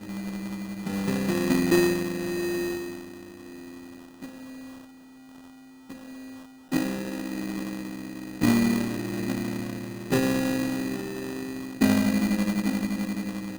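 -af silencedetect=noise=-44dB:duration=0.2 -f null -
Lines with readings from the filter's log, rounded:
silence_start: 4.85
silence_end: 5.29 | silence_duration: 0.45
silence_start: 5.50
silence_end: 5.90 | silence_duration: 0.40
silence_start: 6.46
silence_end: 6.72 | silence_duration: 0.26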